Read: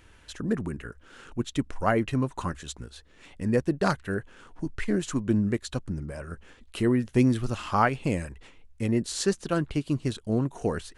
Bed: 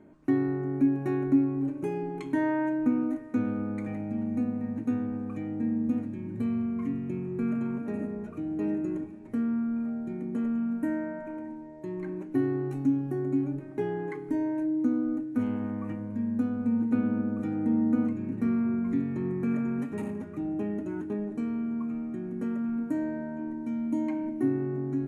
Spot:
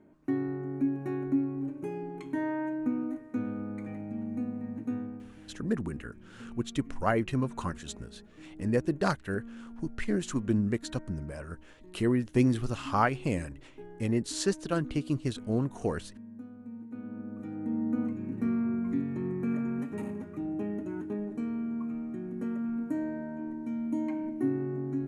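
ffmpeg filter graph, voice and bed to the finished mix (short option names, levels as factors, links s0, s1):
-filter_complex "[0:a]adelay=5200,volume=0.708[s0];[1:a]volume=2.99,afade=t=out:st=4.98:d=0.35:silence=0.251189,afade=t=in:st=16.91:d=1.48:silence=0.188365[s1];[s0][s1]amix=inputs=2:normalize=0"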